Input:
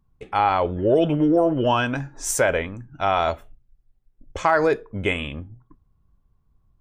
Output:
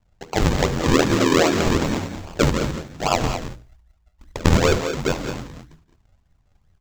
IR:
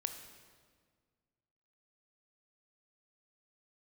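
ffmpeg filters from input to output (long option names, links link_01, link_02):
-filter_complex "[0:a]aeval=exprs='val(0)*sin(2*PI*41*n/s)':channel_layout=same,acrossover=split=4400[link_01][link_02];[link_02]acompressor=threshold=-50dB:ratio=4:attack=1:release=60[link_03];[link_01][link_03]amix=inputs=2:normalize=0,aresample=16000,acrusher=samples=16:mix=1:aa=0.000001:lfo=1:lforange=16:lforate=2.5,aresample=44100,bandreject=frequency=60:width_type=h:width=6,bandreject=frequency=120:width_type=h:width=6,bandreject=frequency=180:width_type=h:width=6,bandreject=frequency=240:width_type=h:width=6,bandreject=frequency=300:width_type=h:width=6,bandreject=frequency=360:width_type=h:width=6,bandreject=frequency=420:width_type=h:width=6,bandreject=frequency=480:width_type=h:width=6,acrusher=bits=6:mode=log:mix=0:aa=0.000001,asplit=2[link_04][link_05];[link_05]aecho=0:1:72|168|180|212:0.15|0.112|0.237|0.335[link_06];[link_04][link_06]amix=inputs=2:normalize=0,volume=4dB"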